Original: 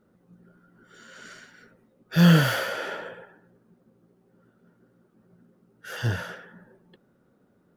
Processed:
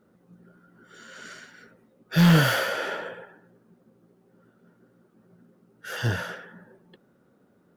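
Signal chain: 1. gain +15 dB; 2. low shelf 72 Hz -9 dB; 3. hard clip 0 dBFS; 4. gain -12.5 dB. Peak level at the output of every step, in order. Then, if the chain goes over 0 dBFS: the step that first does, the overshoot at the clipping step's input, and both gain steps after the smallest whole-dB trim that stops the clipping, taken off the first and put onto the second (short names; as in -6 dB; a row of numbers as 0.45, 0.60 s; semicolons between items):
+9.0, +8.5, 0.0, -12.5 dBFS; step 1, 8.5 dB; step 1 +6 dB, step 4 -3.5 dB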